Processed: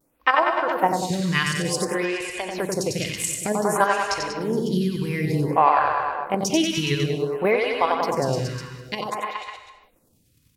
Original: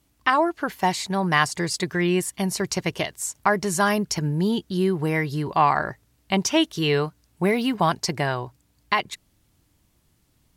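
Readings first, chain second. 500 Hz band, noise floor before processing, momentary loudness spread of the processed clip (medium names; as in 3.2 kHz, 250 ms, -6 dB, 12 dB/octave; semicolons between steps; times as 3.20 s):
+2.0 dB, -66 dBFS, 10 LU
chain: vibrato 0.68 Hz 32 cents; small resonant body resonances 510/2500 Hz, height 12 dB, ringing for 60 ms; wow and flutter 23 cents; level held to a coarse grid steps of 9 dB; on a send: reverse bouncing-ball echo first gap 90 ms, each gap 1.1×, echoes 5; on the sum: hard clipper -5 dBFS, distortion -68 dB; in parallel at +2.5 dB: compression, threshold -27 dBFS, peak gain reduction 12 dB; on the sum: gated-style reverb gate 360 ms flat, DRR 9.5 dB; lamp-driven phase shifter 0.55 Hz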